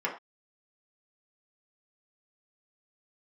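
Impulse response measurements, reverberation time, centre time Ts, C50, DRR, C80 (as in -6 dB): not exponential, 20 ms, 9.0 dB, -3.5 dB, 13.5 dB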